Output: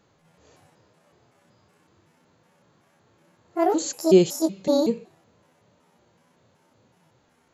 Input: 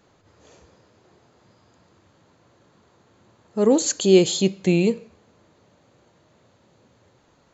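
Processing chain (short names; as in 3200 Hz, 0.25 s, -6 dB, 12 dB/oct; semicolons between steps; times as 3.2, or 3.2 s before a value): trilling pitch shifter +8.5 st, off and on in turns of 0.187 s; harmonic-percussive split percussive -11 dB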